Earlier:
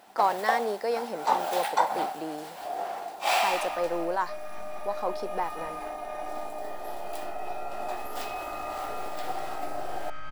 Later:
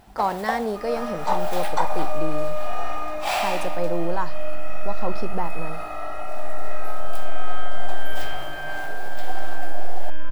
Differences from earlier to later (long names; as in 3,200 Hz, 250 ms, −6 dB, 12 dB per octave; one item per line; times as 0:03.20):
speech: remove high-pass filter 400 Hz 12 dB per octave
second sound: entry −2.75 s
reverb: on, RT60 0.55 s